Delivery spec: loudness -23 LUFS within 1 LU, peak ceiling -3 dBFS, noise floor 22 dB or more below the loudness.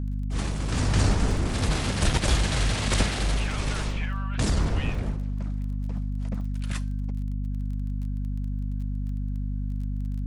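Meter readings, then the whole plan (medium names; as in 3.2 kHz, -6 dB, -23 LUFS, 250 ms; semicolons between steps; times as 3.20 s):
tick rate 20 per s; hum 50 Hz; highest harmonic 250 Hz; hum level -26 dBFS; loudness -28.5 LUFS; peak level -10.5 dBFS; loudness target -23.0 LUFS
-> de-click; hum notches 50/100/150/200/250 Hz; trim +5.5 dB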